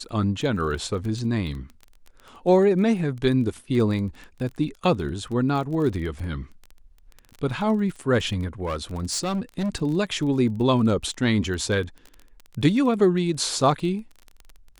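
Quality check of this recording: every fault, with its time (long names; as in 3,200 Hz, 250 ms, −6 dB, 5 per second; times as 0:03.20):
surface crackle 20 per second −31 dBFS
0:08.65–0:09.70: clipping −22.5 dBFS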